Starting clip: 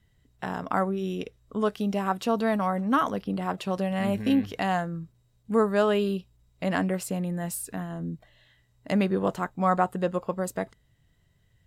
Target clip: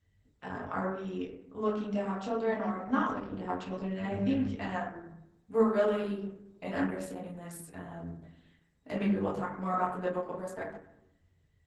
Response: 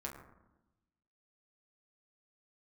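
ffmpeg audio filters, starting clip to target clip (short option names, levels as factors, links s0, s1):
-filter_complex "[0:a]flanger=delay=20:depth=4.8:speed=0.22[s0];[1:a]atrim=start_sample=2205,asetrate=57330,aresample=44100[s1];[s0][s1]afir=irnorm=-1:irlink=0" -ar 48000 -c:a libopus -b:a 12k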